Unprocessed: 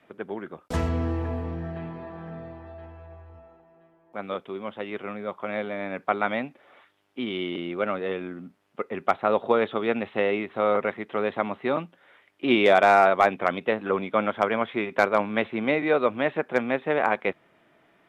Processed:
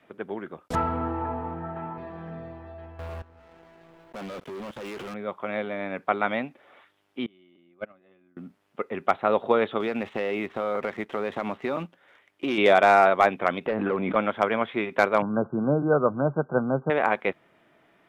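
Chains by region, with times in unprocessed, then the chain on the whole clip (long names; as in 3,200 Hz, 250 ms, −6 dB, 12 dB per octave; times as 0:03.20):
0:00.75–0:01.98: high-pass filter 180 Hz 6 dB per octave + high-frequency loss of the air 400 metres + hollow resonant body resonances 890/1,300 Hz, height 18 dB, ringing for 50 ms
0:02.99–0:05.14: notch filter 800 Hz, Q 22 + output level in coarse steps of 23 dB + leveller curve on the samples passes 5
0:07.26–0:08.37: noise gate −23 dBFS, range −27 dB + high-shelf EQ 4,800 Hz −10 dB + notch comb filter 460 Hz
0:09.80–0:12.58: leveller curve on the samples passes 1 + downward compressor 5 to 1, threshold −24 dBFS
0:13.66–0:14.16: gain into a clipping stage and back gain 19 dB + high-frequency loss of the air 450 metres + background raised ahead of every attack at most 22 dB per second
0:15.22–0:16.90: linear-phase brick-wall low-pass 1,600 Hz + parametric band 140 Hz +14.5 dB 0.6 octaves
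whole clip: no processing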